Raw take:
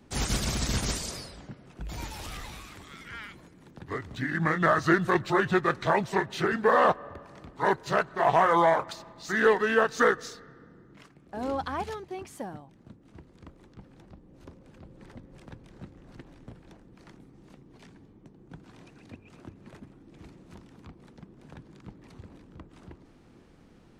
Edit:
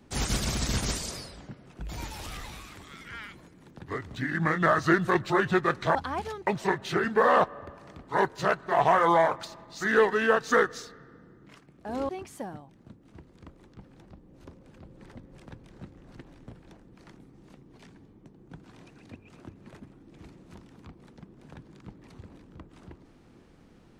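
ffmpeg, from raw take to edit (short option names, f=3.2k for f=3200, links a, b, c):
-filter_complex "[0:a]asplit=4[a][b][c][d];[a]atrim=end=5.952[e];[b]atrim=start=11.568:end=12.092[f];[c]atrim=start=5.948:end=11.572[g];[d]atrim=start=12.088[h];[e][f]acrossfade=d=0.004:c1=hsin:c2=hsin[i];[i][g]acrossfade=d=0.004:c1=hsin:c2=hsin[j];[j][h]acrossfade=d=0.004:c1=hsin:c2=hsin"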